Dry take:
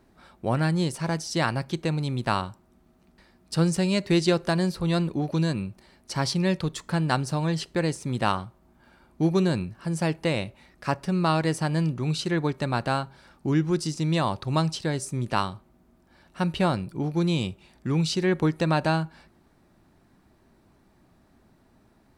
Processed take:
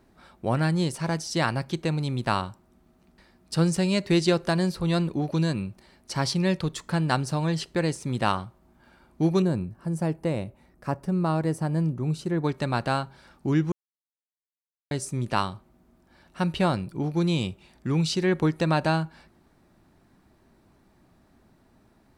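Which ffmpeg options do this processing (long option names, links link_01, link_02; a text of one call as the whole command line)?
ffmpeg -i in.wav -filter_complex "[0:a]asettb=1/sr,asplit=3[link_01][link_02][link_03];[link_01]atrim=end=9.424[link_04];[link_02]atrim=start=9.42:end=12.44,asetpts=PTS-STARTPTS,afade=type=in:duration=0.004:curve=qsin,afade=type=out:start_time=3.016:duration=0.004:curve=qsin,equalizer=frequency=3500:width_type=o:width=2.7:gain=-13[link_05];[link_03]atrim=start=12.436[link_06];[link_04][link_05]acrossfade=duration=0.004:curve1=hsin:curve2=qsin[link_07];[link_07][link_06]acrossfade=duration=0.004:curve1=qsin:curve2=hsin,asplit=3[link_08][link_09][link_10];[link_08]atrim=end=13.72,asetpts=PTS-STARTPTS,afade=type=out:start_time=13.716:duration=0.004:curve=hsin[link_11];[link_09]atrim=start=13.72:end=14.91,asetpts=PTS-STARTPTS,volume=0[link_12];[link_10]atrim=start=14.91,asetpts=PTS-STARTPTS,afade=type=in:duration=0.004:curve=hsin[link_13];[link_11][link_12][link_13]concat=n=3:v=0:a=1" out.wav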